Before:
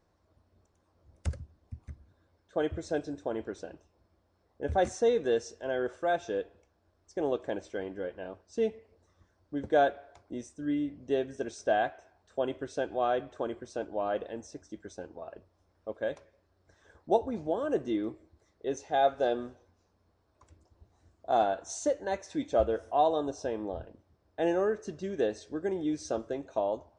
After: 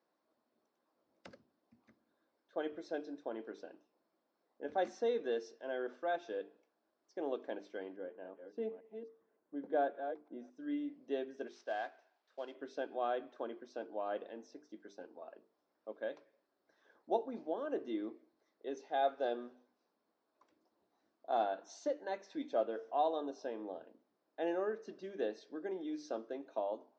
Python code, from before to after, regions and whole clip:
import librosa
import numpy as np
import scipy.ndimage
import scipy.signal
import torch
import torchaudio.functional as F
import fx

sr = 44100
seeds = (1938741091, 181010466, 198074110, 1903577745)

y = fx.chain(x, sr, fx.reverse_delay(ms=282, wet_db=-8),
    fx.lowpass(hz=1100.0, slope=6), at=(7.96, 10.54))
y = fx.chain(y, sr, fx.cvsd(bps=64000),
    fx.highpass(hz=1100.0, slope=6),
    fx.tilt_eq(slope=-1.5), at=(11.47, 12.55))
y = scipy.signal.sosfilt(scipy.signal.cheby1(3, 1.0, [240.0, 4900.0], 'bandpass', fs=sr, output='sos'), y)
y = fx.hum_notches(y, sr, base_hz=50, count=9)
y = y * 10.0 ** (-7.0 / 20.0)